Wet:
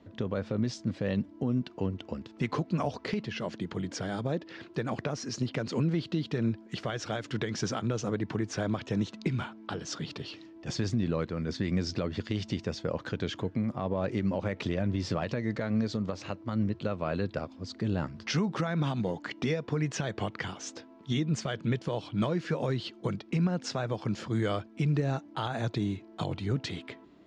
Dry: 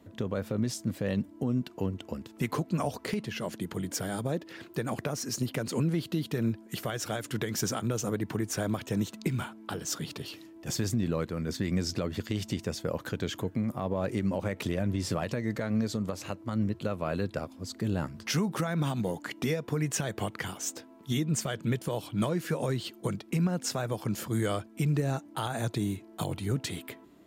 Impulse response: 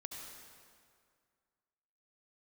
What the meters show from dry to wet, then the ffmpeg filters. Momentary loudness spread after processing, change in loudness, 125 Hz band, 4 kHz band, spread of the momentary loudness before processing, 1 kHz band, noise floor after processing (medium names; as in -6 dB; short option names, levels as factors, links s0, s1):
6 LU, -0.5 dB, 0.0 dB, -1.0 dB, 6 LU, 0.0 dB, -53 dBFS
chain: -af "lowpass=f=5500:w=0.5412,lowpass=f=5500:w=1.3066"